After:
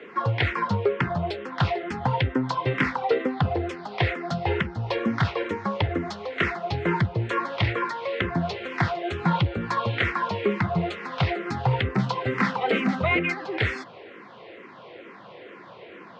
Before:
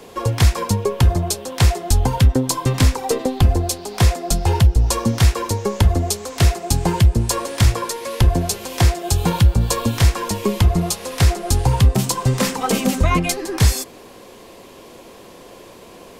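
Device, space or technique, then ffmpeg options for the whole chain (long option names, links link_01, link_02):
barber-pole phaser into a guitar amplifier: -filter_complex "[0:a]highpass=frequency=92:width=0.5412,highpass=frequency=92:width=1.3066,asplit=2[link_01][link_02];[link_02]afreqshift=-2.2[link_03];[link_01][link_03]amix=inputs=2:normalize=1,asoftclip=type=tanh:threshold=-11.5dB,highpass=110,equalizer=frequency=250:width_type=q:width=4:gain=-4,equalizer=frequency=1400:width_type=q:width=4:gain=7,equalizer=frequency=2000:width_type=q:width=4:gain=8,lowpass=frequency=3400:width=0.5412,lowpass=frequency=3400:width=1.3066"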